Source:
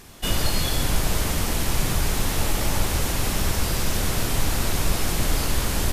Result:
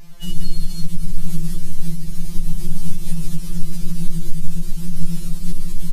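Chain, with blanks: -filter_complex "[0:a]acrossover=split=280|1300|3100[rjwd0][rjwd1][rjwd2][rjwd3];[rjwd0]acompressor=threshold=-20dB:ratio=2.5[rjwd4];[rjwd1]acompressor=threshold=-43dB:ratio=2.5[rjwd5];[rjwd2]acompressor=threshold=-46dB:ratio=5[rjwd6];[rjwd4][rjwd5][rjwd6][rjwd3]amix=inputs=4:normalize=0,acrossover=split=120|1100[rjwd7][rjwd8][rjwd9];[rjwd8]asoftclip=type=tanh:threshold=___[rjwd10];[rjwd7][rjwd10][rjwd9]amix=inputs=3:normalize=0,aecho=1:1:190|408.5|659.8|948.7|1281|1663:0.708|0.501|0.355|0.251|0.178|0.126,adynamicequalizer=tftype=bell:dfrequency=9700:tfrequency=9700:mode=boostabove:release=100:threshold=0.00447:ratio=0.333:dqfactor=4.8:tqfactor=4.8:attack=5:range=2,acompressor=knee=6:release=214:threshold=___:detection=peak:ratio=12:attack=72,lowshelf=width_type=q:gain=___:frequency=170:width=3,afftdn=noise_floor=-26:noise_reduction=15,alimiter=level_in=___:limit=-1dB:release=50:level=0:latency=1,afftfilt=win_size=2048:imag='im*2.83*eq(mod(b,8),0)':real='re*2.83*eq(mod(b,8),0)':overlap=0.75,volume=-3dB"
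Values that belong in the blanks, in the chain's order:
-37.5dB, -28dB, 9.5, 15dB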